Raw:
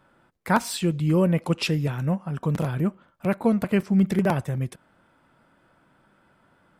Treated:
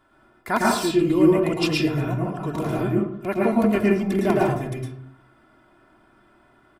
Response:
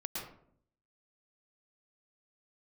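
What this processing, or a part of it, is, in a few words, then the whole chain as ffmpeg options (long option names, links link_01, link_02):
microphone above a desk: -filter_complex "[0:a]aecho=1:1:2.9:0.71[link_01];[1:a]atrim=start_sample=2205[link_02];[link_01][link_02]afir=irnorm=-1:irlink=0,volume=1.5dB"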